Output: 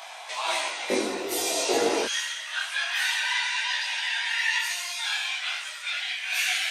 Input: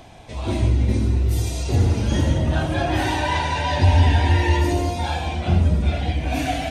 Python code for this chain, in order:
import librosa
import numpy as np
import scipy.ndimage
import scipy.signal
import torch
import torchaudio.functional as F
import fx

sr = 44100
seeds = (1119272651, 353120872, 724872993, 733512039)

y = fx.highpass(x, sr, hz=fx.steps((0.0, 850.0), (0.9, 400.0), (2.05, 1500.0)), slope=24)
y = fx.rider(y, sr, range_db=5, speed_s=2.0)
y = fx.detune_double(y, sr, cents=37)
y = y * librosa.db_to_amplitude(8.5)